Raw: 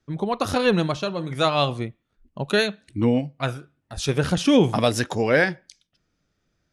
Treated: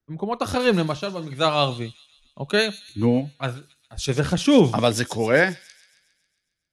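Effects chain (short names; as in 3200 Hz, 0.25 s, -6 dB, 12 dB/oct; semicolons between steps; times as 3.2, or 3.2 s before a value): thin delay 0.136 s, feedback 70%, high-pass 5000 Hz, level -8 dB; three-band expander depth 40%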